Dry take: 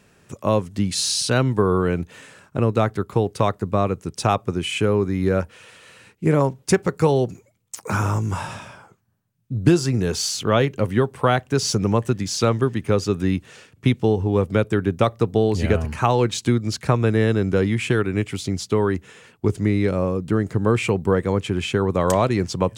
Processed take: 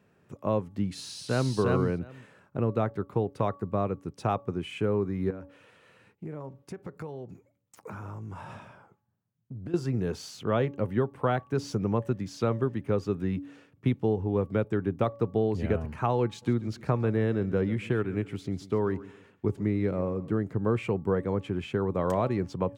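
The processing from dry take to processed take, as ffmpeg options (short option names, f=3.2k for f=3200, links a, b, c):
-filter_complex "[0:a]asplit=2[a][b];[b]afade=t=in:st=0.93:d=0.01,afade=t=out:st=1.56:d=0.01,aecho=0:1:350|700:0.841395|0.0841395[c];[a][c]amix=inputs=2:normalize=0,asettb=1/sr,asplit=3[d][e][f];[d]atrim=end=5.304[g];[e]atrim=start=5.3:end=9.74,asetpts=PTS-STARTPTS,afade=t=in:d=0.004:c=qsin,afade=t=out:st=4.436:d=0.004:c=qsin,acompressor=threshold=-28dB:ratio=6:attack=3.2:release=140:knee=1:detection=peak[h];[f]atrim=start=9.736[i];[g][h]acrossfade=d=0.004:c1=hsin:c2=qsin[j];[j][i]acrossfade=d=0.004:c1=qsin:c2=hsin,asplit=3[k][l][m];[k]afade=t=out:st=16.41:d=0.02[n];[l]aecho=1:1:139|278|417:0.126|0.0415|0.0137,afade=t=in:st=16.41:d=0.02,afade=t=out:st=20.33:d=0.02[o];[m]afade=t=in:st=20.33:d=0.02[p];[n][o][p]amix=inputs=3:normalize=0,highpass=85,equalizer=f=8k:w=0.34:g=-14.5,bandreject=f=283:t=h:w=4,bandreject=f=566:t=h:w=4,bandreject=f=849:t=h:w=4,bandreject=f=1.132k:t=h:w=4,volume=-7dB"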